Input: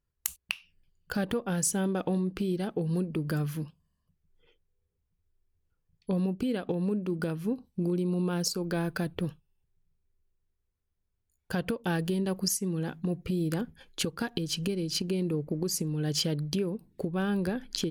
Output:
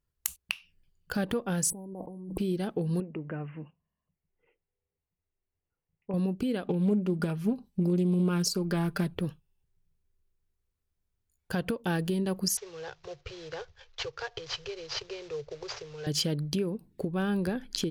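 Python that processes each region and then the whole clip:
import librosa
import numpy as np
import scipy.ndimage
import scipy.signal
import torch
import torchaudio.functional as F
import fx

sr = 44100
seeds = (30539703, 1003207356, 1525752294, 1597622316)

y = fx.chain(x, sr, fx.brickwall_bandstop(low_hz=1100.0, high_hz=7900.0),
    fx.over_compress(threshold_db=-40.0, ratio=-1.0), at=(1.7, 2.38))
y = fx.chain(y, sr, fx.cheby_ripple(hz=2900.0, ripple_db=6),
    fx.low_shelf(hz=85.0, db=-10.0), at=(3.0, 6.14))
y = fx.chain(y, sr, fx.comb(ms=5.0, depth=0.56),
    fx.doppler_dist(depth_ms=0.16), at=(6.64, 9.15))
y = fx.chain(y, sr, fx.cvsd(bps=32000),
    fx.cheby1_bandstop(low_hz=120.0, high_hz=430.0, order=3), at=(12.57, 16.07))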